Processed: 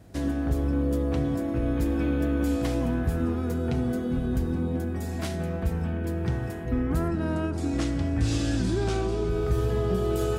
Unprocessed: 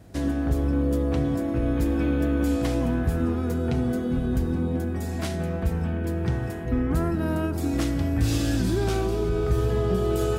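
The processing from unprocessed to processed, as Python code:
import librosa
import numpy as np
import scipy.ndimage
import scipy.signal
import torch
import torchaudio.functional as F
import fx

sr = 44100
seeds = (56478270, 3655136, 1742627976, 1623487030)

y = fx.lowpass(x, sr, hz=9100.0, slope=24, at=(7.08, 9.29))
y = y * librosa.db_to_amplitude(-2.0)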